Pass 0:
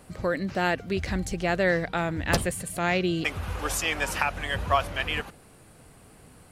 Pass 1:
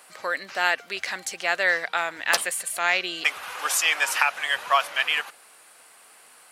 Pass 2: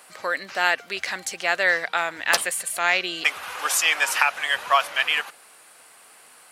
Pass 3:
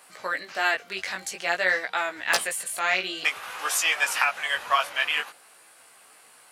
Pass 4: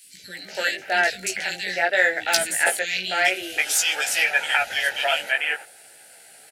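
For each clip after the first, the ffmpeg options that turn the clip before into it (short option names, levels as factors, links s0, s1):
-af "highpass=1000,volume=2.11"
-af "lowshelf=f=200:g=4,volume=1.19"
-af "flanger=delay=15:depth=6.3:speed=0.51"
-filter_complex "[0:a]acrossover=split=7800[s0][s1];[s0]asuperstop=centerf=1100:order=4:qfactor=1.8[s2];[s1]asoftclip=type=tanh:threshold=0.0376[s3];[s2][s3]amix=inputs=2:normalize=0,acrossover=split=290|2600[s4][s5][s6];[s4]adelay=40[s7];[s5]adelay=330[s8];[s7][s8][s6]amix=inputs=3:normalize=0,volume=2.11"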